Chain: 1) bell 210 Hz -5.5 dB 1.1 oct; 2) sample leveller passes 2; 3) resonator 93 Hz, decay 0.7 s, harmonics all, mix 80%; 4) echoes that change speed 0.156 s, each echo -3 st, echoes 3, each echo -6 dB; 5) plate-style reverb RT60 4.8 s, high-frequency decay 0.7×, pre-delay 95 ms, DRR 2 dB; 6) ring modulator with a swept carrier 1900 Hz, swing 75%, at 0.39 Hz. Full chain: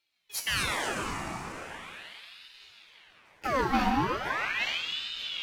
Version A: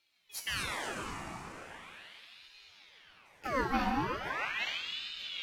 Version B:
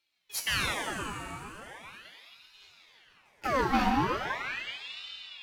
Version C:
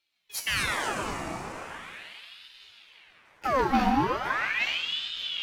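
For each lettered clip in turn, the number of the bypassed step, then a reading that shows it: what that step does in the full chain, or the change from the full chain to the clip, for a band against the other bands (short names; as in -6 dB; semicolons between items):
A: 2, crest factor change +3.0 dB; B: 4, momentary loudness spread change +2 LU; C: 1, 8 kHz band -2.0 dB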